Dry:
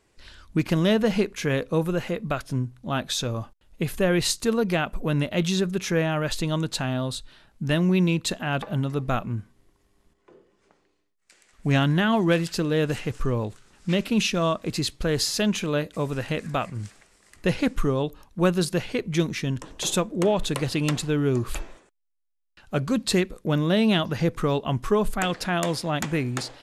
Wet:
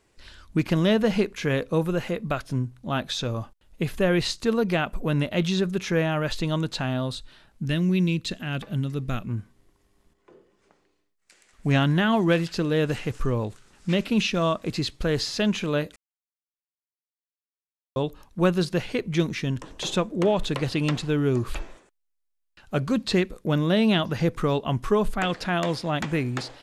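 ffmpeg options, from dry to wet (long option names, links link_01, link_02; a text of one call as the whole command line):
ffmpeg -i in.wav -filter_complex "[0:a]asettb=1/sr,asplit=3[link_01][link_02][link_03];[link_01]atrim=end=7.654[link_04];[link_02]atrim=start=7.65:end=9.29,asetpts=PTS-STARTPTS,afade=type=in:duration=0.004:curve=qsin,afade=type=out:start_time=1.636:duration=0.004:curve=qsin,equalizer=frequency=840:width_type=o:width=1.7:gain=-11.5[link_05];[link_03]atrim=start=9.286[link_06];[link_04][link_05]acrossfade=duration=0.004:curve1=hsin:curve2=qsin[link_07];[link_07][link_06]acrossfade=duration=0.004:curve1=qsin:curve2=hsin,asplit=3[link_08][link_09][link_10];[link_08]atrim=end=15.96,asetpts=PTS-STARTPTS,afade=type=out:start_time=15.956:duration=0.004:curve=hsin[link_11];[link_09]atrim=start=15.96:end=17.96,asetpts=PTS-STARTPTS,volume=0[link_12];[link_10]atrim=start=17.96,asetpts=PTS-STARTPTS,afade=type=in:duration=0.004:curve=hsin[link_13];[link_11][link_12][link_13]concat=n=3:v=0:a=1,acrossover=split=5500[link_14][link_15];[link_15]acompressor=threshold=-47dB:ratio=4:attack=1:release=60[link_16];[link_14][link_16]amix=inputs=2:normalize=0" out.wav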